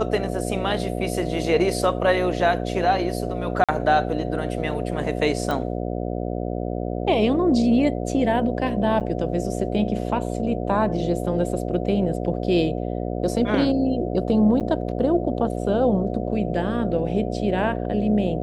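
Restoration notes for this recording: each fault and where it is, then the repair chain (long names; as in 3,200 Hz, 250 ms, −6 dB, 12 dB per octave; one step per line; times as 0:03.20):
mains buzz 60 Hz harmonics 12 −27 dBFS
0:03.64–0:03.69: drop-out 46 ms
0:05.51: click
0:09.00–0:09.01: drop-out 8.2 ms
0:14.60–0:14.61: drop-out 7.9 ms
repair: click removal
hum removal 60 Hz, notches 12
repair the gap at 0:03.64, 46 ms
repair the gap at 0:09.00, 8.2 ms
repair the gap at 0:14.60, 7.9 ms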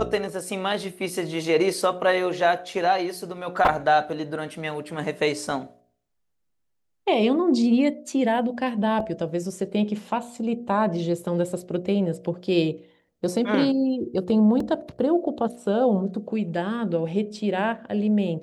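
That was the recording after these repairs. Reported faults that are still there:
none of them is left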